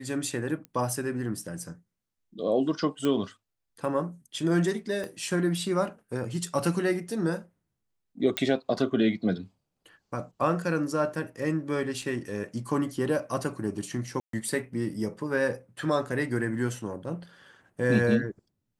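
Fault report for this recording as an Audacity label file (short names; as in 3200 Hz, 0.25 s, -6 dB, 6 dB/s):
0.650000	0.650000	pop -26 dBFS
3.050000	3.050000	pop -16 dBFS
5.040000	5.040000	pop -24 dBFS
8.370000	8.370000	pop -13 dBFS
12.020000	12.020000	gap 2.9 ms
14.200000	14.330000	gap 0.133 s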